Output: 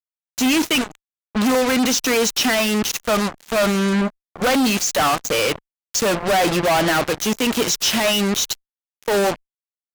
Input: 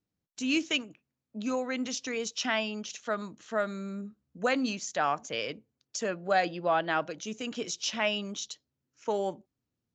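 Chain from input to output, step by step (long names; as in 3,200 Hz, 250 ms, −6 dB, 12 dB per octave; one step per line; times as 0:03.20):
fuzz pedal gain 41 dB, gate −46 dBFS
harmonic generator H 3 −14 dB, 7 −13 dB, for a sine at −10 dBFS
level −2 dB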